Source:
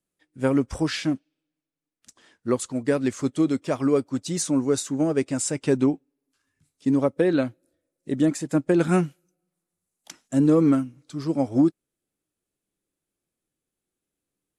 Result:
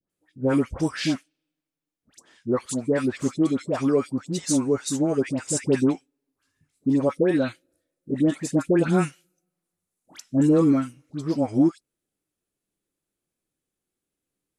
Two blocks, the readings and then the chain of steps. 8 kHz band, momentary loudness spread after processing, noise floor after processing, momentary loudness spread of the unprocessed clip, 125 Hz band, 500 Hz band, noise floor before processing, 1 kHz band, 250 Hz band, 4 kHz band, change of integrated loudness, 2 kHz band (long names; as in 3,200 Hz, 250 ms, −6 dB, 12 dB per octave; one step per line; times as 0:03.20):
0.0 dB, 9 LU, below −85 dBFS, 8 LU, 0.0 dB, 0.0 dB, below −85 dBFS, 0.0 dB, 0.0 dB, 0.0 dB, 0.0 dB, 0.0 dB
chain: all-pass dispersion highs, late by 99 ms, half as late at 1,300 Hz